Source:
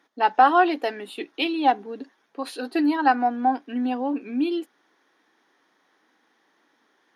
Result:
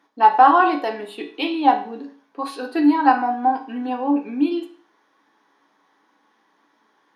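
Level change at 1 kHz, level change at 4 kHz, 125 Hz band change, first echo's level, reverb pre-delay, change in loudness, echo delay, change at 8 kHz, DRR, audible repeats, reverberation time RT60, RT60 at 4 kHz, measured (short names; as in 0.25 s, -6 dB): +4.5 dB, -0.5 dB, n/a, none, 8 ms, +4.0 dB, none, n/a, 3.0 dB, none, 0.45 s, 0.45 s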